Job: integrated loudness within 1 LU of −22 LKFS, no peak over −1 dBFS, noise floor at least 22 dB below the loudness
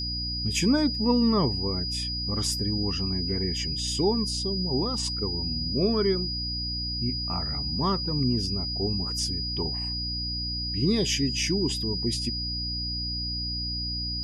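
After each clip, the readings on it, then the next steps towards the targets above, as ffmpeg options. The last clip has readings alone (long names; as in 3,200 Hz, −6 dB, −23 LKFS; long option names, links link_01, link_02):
mains hum 60 Hz; hum harmonics up to 300 Hz; level of the hum −32 dBFS; interfering tone 4,900 Hz; level of the tone −30 dBFS; integrated loudness −26.5 LKFS; sample peak −11.5 dBFS; target loudness −22.0 LKFS
→ -af "bandreject=frequency=60:width_type=h:width=4,bandreject=frequency=120:width_type=h:width=4,bandreject=frequency=180:width_type=h:width=4,bandreject=frequency=240:width_type=h:width=4,bandreject=frequency=300:width_type=h:width=4"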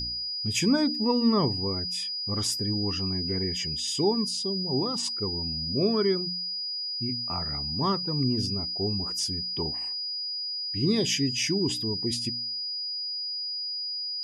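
mains hum none found; interfering tone 4,900 Hz; level of the tone −30 dBFS
→ -af "bandreject=frequency=4900:width=30"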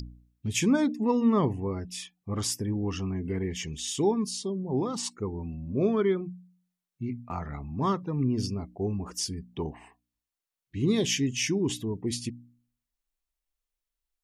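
interfering tone none found; integrated loudness −29.5 LKFS; sample peak −14.0 dBFS; target loudness −22.0 LKFS
→ -af "volume=7.5dB"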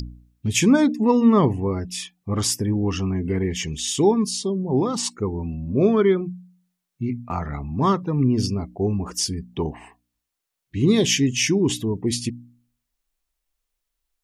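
integrated loudness −22.0 LKFS; sample peak −6.5 dBFS; background noise floor −82 dBFS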